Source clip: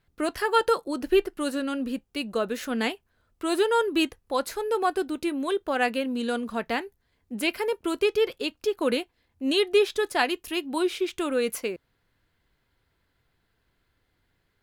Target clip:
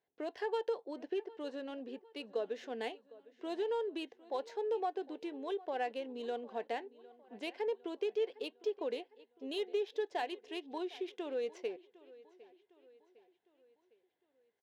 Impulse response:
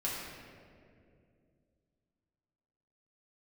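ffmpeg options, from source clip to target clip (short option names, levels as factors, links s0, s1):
-af "equalizer=f=1300:t=o:w=0.51:g=-5.5,acompressor=threshold=0.0562:ratio=4,highpass=390,equalizer=f=440:t=q:w=4:g=6,equalizer=f=750:t=q:w=4:g=5,equalizer=f=1300:t=q:w=4:g=-9,equalizer=f=2400:t=q:w=4:g=-5,equalizer=f=4500:t=q:w=4:g=-5,lowpass=f=6300:w=0.5412,lowpass=f=6300:w=1.3066,aecho=1:1:756|1512|2268|3024:0.1|0.049|0.024|0.0118,adynamicsmooth=sensitivity=6.5:basefreq=4000,volume=0.355"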